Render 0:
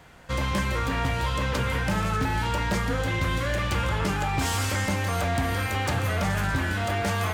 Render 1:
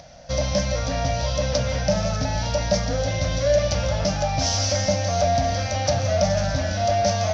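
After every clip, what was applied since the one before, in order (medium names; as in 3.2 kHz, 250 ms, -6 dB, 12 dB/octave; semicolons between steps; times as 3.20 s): FFT filter 180 Hz 0 dB, 280 Hz -4 dB, 400 Hz -16 dB, 600 Hz +14 dB, 990 Hz -10 dB, 3.1 kHz -4 dB, 5.9 kHz +14 dB, 8.5 kHz -29 dB; upward compressor, threshold -44 dBFS; trim +2.5 dB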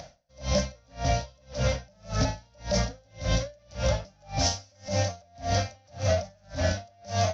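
peak limiter -16.5 dBFS, peak gain reduction 8 dB; logarithmic tremolo 1.8 Hz, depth 38 dB; trim +2.5 dB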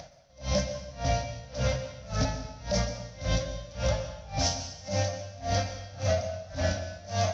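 plate-style reverb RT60 1 s, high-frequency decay 0.95×, pre-delay 105 ms, DRR 9.5 dB; trim -2 dB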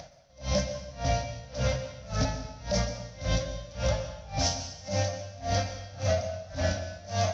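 no audible change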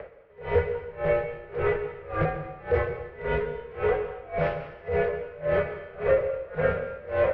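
CVSD coder 64 kbps; mistuned SSB -110 Hz 190–2400 Hz; trim +7 dB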